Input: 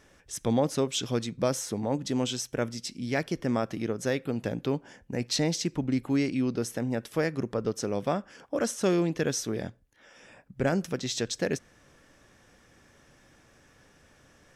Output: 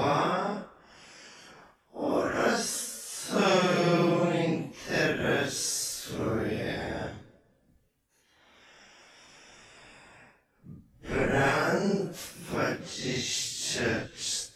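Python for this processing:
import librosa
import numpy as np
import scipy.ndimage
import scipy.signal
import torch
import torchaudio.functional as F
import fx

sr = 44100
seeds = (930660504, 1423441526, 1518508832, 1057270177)

y = fx.spec_clip(x, sr, under_db=13)
y = fx.paulstretch(y, sr, seeds[0], factor=4.4, window_s=0.05, from_s=8.07)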